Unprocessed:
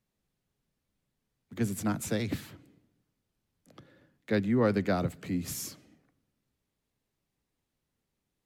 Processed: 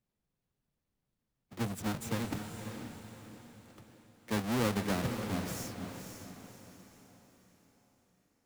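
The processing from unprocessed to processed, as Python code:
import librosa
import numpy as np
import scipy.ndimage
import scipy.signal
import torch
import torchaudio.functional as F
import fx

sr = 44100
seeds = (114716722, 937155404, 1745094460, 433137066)

y = fx.halfwave_hold(x, sr)
y = fx.echo_diffused(y, sr, ms=530, feedback_pct=43, wet_db=-7)
y = F.gain(torch.from_numpy(y), -9.0).numpy()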